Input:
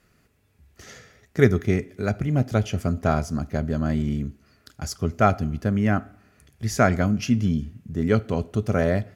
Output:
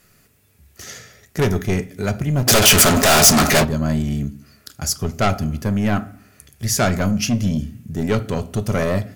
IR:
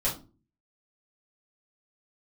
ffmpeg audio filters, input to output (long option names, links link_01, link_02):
-filter_complex "[0:a]asplit=3[link_01][link_02][link_03];[link_01]afade=type=out:start_time=2.47:duration=0.02[link_04];[link_02]asplit=2[link_05][link_06];[link_06]highpass=frequency=720:poles=1,volume=39dB,asoftclip=type=tanh:threshold=-7.5dB[link_07];[link_05][link_07]amix=inputs=2:normalize=0,lowpass=frequency=6200:poles=1,volume=-6dB,afade=type=in:start_time=2.47:duration=0.02,afade=type=out:start_time=3.63:duration=0.02[link_08];[link_03]afade=type=in:start_time=3.63:duration=0.02[link_09];[link_04][link_08][link_09]amix=inputs=3:normalize=0,asoftclip=type=tanh:threshold=-17dB,crystalizer=i=2.5:c=0,asplit=2[link_10][link_11];[1:a]atrim=start_sample=2205,lowpass=4600[link_12];[link_11][link_12]afir=irnorm=-1:irlink=0,volume=-19.5dB[link_13];[link_10][link_13]amix=inputs=2:normalize=0,volume=3.5dB"